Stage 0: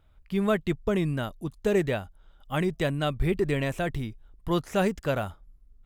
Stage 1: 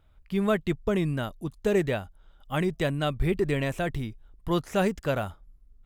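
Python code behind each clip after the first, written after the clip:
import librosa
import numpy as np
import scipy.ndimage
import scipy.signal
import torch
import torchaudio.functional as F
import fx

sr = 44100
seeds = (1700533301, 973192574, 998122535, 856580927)

y = x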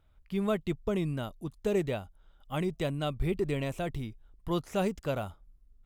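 y = fx.dynamic_eq(x, sr, hz=1700.0, q=3.4, threshold_db=-51.0, ratio=4.0, max_db=-8)
y = y * librosa.db_to_amplitude(-4.5)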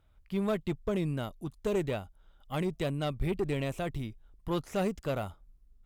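y = fx.tube_stage(x, sr, drive_db=24.0, bias=0.4)
y = y * librosa.db_to_amplitude(1.5)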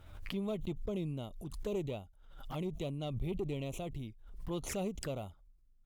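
y = fx.env_flanger(x, sr, rest_ms=11.5, full_db=-31.5)
y = fx.pre_swell(y, sr, db_per_s=60.0)
y = y * librosa.db_to_amplitude(-6.0)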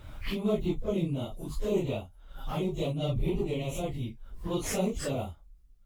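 y = fx.phase_scramble(x, sr, seeds[0], window_ms=100)
y = y * librosa.db_to_amplitude(7.5)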